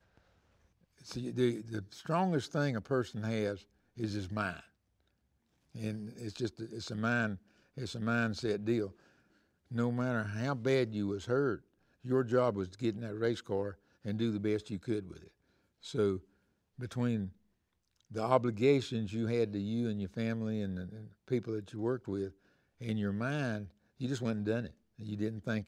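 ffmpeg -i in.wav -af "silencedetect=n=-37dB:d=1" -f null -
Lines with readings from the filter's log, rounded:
silence_start: 0.00
silence_end: 1.11 | silence_duration: 1.11
silence_start: 4.54
silence_end: 5.75 | silence_duration: 1.21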